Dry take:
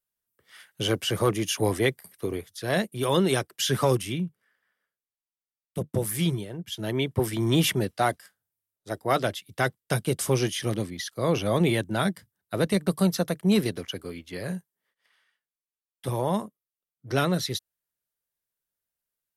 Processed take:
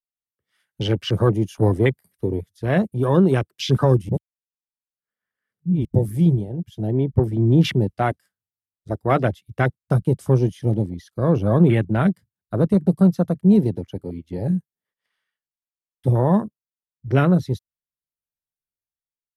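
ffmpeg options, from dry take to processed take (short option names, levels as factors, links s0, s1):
-filter_complex "[0:a]asettb=1/sr,asplit=3[s0][s1][s2];[s0]atrim=end=6.874[s3];[s1]atrim=start=6.87:end=7.65,asetpts=PTS-STARTPTS,afade=t=in:d=0.004:c=qsin,afade=t=out:st=0.776:d=0.004:c=qsin,highshelf=f=2800:g=-7.5[s4];[s2]atrim=start=7.646[s5];[s3][s4]acrossfade=d=0.004:c1=hsin:c2=qsin[s6];[s6][s5]acrossfade=d=0.004:c1=qsin:c2=hsin,asplit=3[s7][s8][s9];[s7]atrim=end=4.092[s10];[s8]atrim=start=4.088:end=5.852,asetpts=PTS-STARTPTS,areverse[s11];[s9]atrim=start=5.848[s12];[s10][s11]acrossfade=d=0.004:c1=hsin:c2=hsin[s13];[s13][s12]acrossfade=d=0.004:c1=hsin:c2=hsin,afwtdn=0.0282,lowshelf=f=260:g=11,dynaudnorm=f=340:g=5:m=3.76,volume=0.631"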